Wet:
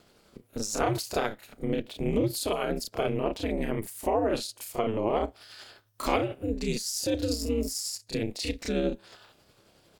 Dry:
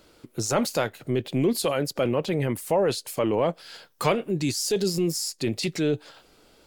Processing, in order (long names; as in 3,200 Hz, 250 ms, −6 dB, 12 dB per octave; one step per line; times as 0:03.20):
ring modulation 110 Hz
time stretch by overlap-add 1.5×, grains 181 ms